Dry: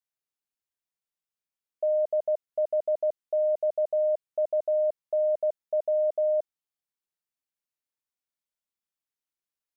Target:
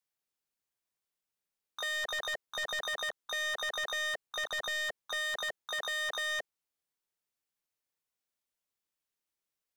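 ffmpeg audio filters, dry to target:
-filter_complex "[0:a]equalizer=f=440:t=o:w=0.53:g=2,aeval=exprs='0.0422*(abs(mod(val(0)/0.0422+3,4)-2)-1)':c=same,asplit=2[a][b];[b]asetrate=88200,aresample=44100,atempo=0.5,volume=-5dB[c];[a][c]amix=inputs=2:normalize=0,asoftclip=type=hard:threshold=-32.5dB,volume=1.5dB"

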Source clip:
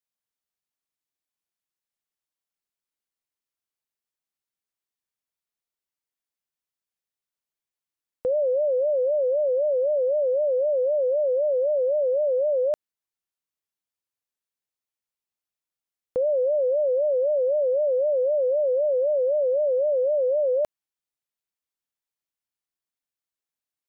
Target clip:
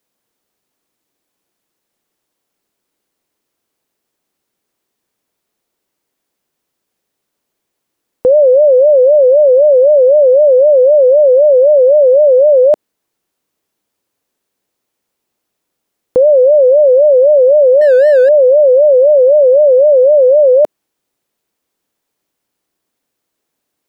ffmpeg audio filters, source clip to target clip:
-filter_complex "[0:a]asettb=1/sr,asplit=3[a][b][c];[a]atrim=end=17.814[d];[b]atrim=start=17.81:end=18.29,asetpts=PTS-STARTPTS,afade=t=in:d=0.004:c=qsin,afade=t=out:st=0.476:d=0.004:c=qsin,volume=24dB,asoftclip=hard,volume=-24dB[e];[c]atrim=start=18.286[f];[d][e]acrossfade=d=0.004:c1=hsin:c2=qsin[g];[g][f]acrossfade=d=0.004:c1=qsin:c2=hsin,equalizer=f=340:w=0.52:g=11.5,alimiter=level_in=18.5dB:limit=-1dB:release=50:level=0:latency=1,volume=-2.5dB"

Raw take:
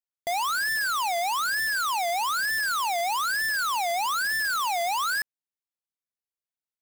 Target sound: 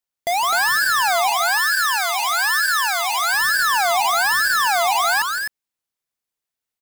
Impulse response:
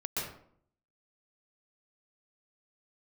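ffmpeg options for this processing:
-filter_complex "[0:a]asettb=1/sr,asplit=3[a][b][c];[a]atrim=end=1.324[d];[b]atrim=start=1.32:end=3.32,asetpts=PTS-STARTPTS,afade=t=in:d=0.004:c=qsin,afade=t=out:st=1.996:d=0.004:c=qsin,highpass=1k[e];[c]atrim=start=3.316[f];[d][e]acrossfade=d=0.004:c1=hsin:c2=qsin[g];[g][f]acrossfade=d=0.004:c1=qsin:c2=hsin,aecho=1:1:163.3|256.6:0.316|0.562,volume=7dB"

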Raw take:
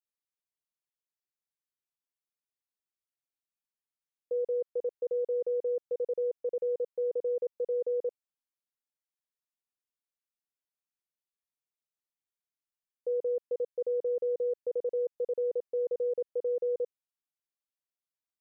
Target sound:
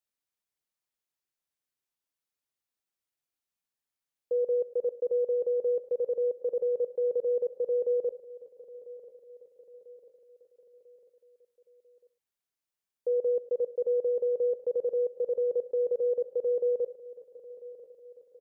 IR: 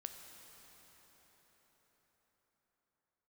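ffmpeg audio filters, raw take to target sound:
-filter_complex "[0:a]aecho=1:1:995|1990|2985|3980:0.133|0.0693|0.0361|0.0188,asplit=2[a][b];[1:a]atrim=start_sample=2205,afade=t=out:st=0.16:d=0.01,atrim=end_sample=7497[c];[b][c]afir=irnorm=-1:irlink=0,volume=7dB[d];[a][d]amix=inputs=2:normalize=0,volume=-4dB"

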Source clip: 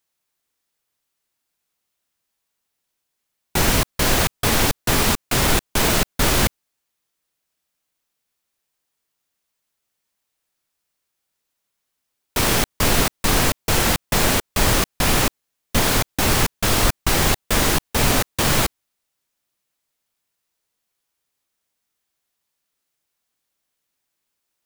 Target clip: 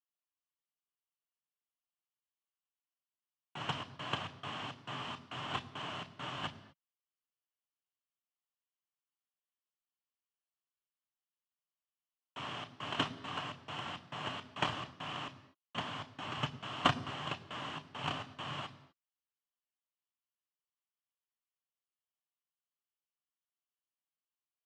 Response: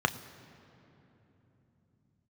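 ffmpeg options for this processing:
-filter_complex "[0:a]agate=range=-45dB:threshold=-10dB:ratio=16:detection=peak,highpass=120,equalizer=f=190:t=q:w=4:g=-3,equalizer=f=460:t=q:w=4:g=-7,equalizer=f=650:t=q:w=4:g=4,equalizer=f=1.1k:t=q:w=4:g=7,equalizer=f=3k:t=q:w=4:g=9,equalizer=f=6.6k:t=q:w=4:g=-6,lowpass=f=6.9k:w=0.5412,lowpass=f=6.9k:w=1.3066[a];[1:a]atrim=start_sample=2205,afade=t=out:st=0.31:d=0.01,atrim=end_sample=14112[b];[a][b]afir=irnorm=-1:irlink=0,volume=10.5dB"

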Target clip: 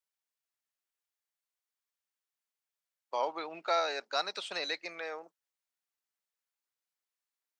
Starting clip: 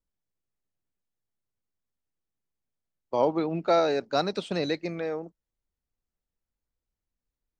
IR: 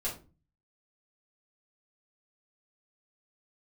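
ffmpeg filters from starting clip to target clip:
-filter_complex "[0:a]highpass=990,asplit=2[a][b];[b]alimiter=level_in=2.5dB:limit=-24dB:level=0:latency=1:release=486,volume=-2.5dB,volume=-2.5dB[c];[a][c]amix=inputs=2:normalize=0,volume=-3dB"

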